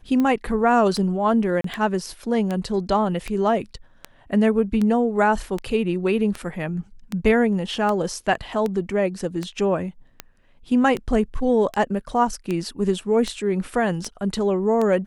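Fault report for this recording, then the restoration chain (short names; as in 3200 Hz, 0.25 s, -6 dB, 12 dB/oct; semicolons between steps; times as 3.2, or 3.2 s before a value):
tick 78 rpm -13 dBFS
1.61–1.64 gap 33 ms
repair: de-click; interpolate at 1.61, 33 ms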